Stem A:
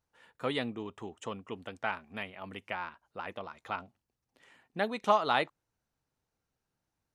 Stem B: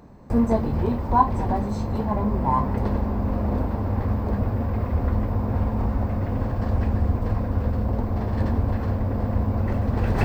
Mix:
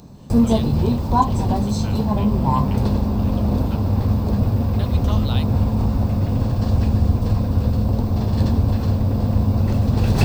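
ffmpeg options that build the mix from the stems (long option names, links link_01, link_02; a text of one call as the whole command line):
ffmpeg -i stem1.wav -i stem2.wav -filter_complex "[0:a]volume=-7.5dB[link_01];[1:a]equalizer=frequency=140:width_type=o:width=1.5:gain=8,bandreject=frequency=3100:width=21,volume=1dB[link_02];[link_01][link_02]amix=inputs=2:normalize=0,aexciter=amount=11.5:drive=3.3:freq=2900,highshelf=frequency=3600:gain=-12" out.wav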